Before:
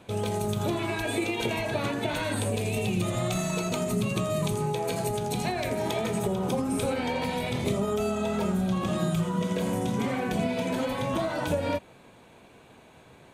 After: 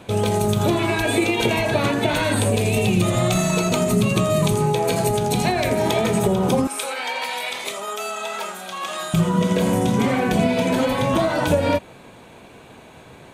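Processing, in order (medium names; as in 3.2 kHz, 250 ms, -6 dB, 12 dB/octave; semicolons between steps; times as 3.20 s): 6.67–9.14 s: high-pass 980 Hz 12 dB/octave; trim +9 dB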